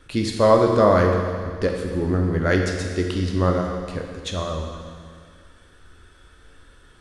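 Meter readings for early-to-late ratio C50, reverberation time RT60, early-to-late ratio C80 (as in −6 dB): 3.5 dB, 2.0 s, 5.0 dB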